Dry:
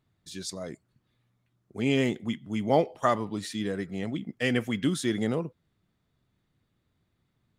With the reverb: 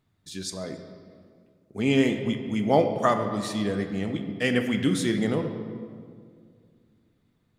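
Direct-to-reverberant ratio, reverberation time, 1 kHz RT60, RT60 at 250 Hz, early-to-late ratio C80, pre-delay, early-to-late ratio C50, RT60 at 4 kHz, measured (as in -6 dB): 6.0 dB, 2.1 s, 1.9 s, 2.7 s, 8.5 dB, 4 ms, 7.5 dB, 1.3 s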